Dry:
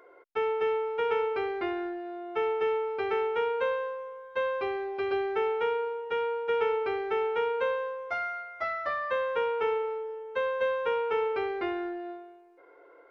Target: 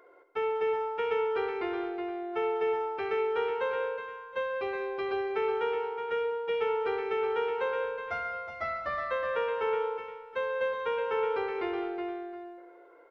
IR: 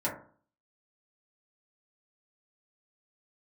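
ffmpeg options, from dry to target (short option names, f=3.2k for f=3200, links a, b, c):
-filter_complex "[0:a]asettb=1/sr,asplit=3[a][b][c];[a]atrim=end=7.844[d];[b]atrim=start=7.84:end=9.03,asetpts=PTS-STARTPTS,afade=t=in:d=0.004:c=qsin,afade=t=out:st=1.186:d=0.004:c=qsin,bass=f=250:g=11,treble=f=4k:g=0[e];[c]atrim=start=9.026[f];[d][e]acrossfade=d=0.004:c1=hsin:c2=qsin[g];[g][f]acrossfade=d=0.004:c1=qsin:c2=hsin,aecho=1:1:68|137|166|196|369|718:0.188|0.178|0.133|0.178|0.447|0.119,volume=-2.5dB"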